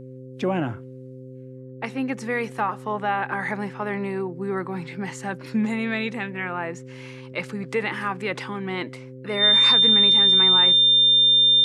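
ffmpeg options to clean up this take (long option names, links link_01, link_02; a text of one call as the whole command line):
ffmpeg -i in.wav -af "bandreject=frequency=129.4:width_type=h:width=4,bandreject=frequency=258.8:width_type=h:width=4,bandreject=frequency=388.2:width_type=h:width=4,bandreject=frequency=517.6:width_type=h:width=4,bandreject=frequency=3600:width=30" out.wav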